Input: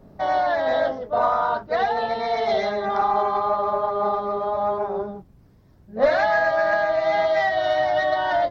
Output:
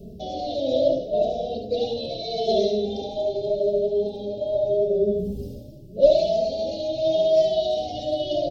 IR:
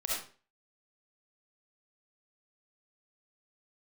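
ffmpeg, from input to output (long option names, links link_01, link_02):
-filter_complex "[0:a]equalizer=frequency=1800:width=1.1:gain=-6.5,bandreject=frequency=50:width_type=h:width=6,bandreject=frequency=100:width_type=h:width=6,bandreject=frequency=150:width_type=h:width=6,bandreject=frequency=200:width_type=h:width=6,areverse,acompressor=mode=upward:threshold=-23dB:ratio=2.5,areverse,asuperstop=centerf=1300:order=12:qfactor=0.61,aecho=1:1:71|387|487|649:0.531|0.112|0.133|0.112,asplit=2[link_01][link_02];[link_02]adelay=2.6,afreqshift=0.8[link_03];[link_01][link_03]amix=inputs=2:normalize=1,volume=7dB"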